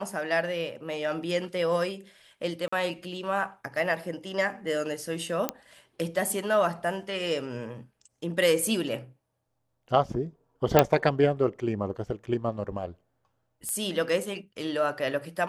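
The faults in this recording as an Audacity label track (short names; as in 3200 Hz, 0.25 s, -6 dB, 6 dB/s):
2.680000	2.730000	gap 45 ms
5.490000	5.490000	pop -10 dBFS
10.790000	10.790000	pop -3 dBFS
13.690000	13.690000	pop -19 dBFS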